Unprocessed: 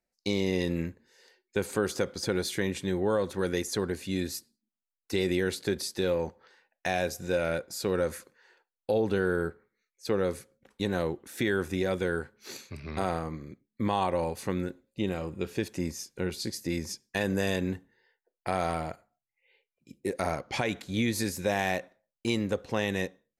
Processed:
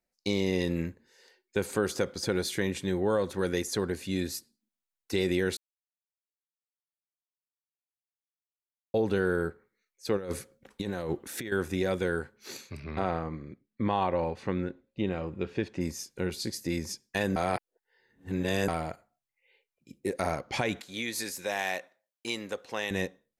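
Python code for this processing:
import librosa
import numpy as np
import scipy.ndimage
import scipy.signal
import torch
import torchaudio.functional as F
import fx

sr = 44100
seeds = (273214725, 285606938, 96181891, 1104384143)

y = fx.over_compress(x, sr, threshold_db=-32.0, ratio=-0.5, at=(10.17, 11.52))
y = fx.lowpass(y, sr, hz=3300.0, slope=12, at=(12.84, 15.81))
y = fx.highpass(y, sr, hz=800.0, slope=6, at=(20.81, 22.91))
y = fx.edit(y, sr, fx.silence(start_s=5.57, length_s=3.37),
    fx.reverse_span(start_s=17.36, length_s=1.32), tone=tone)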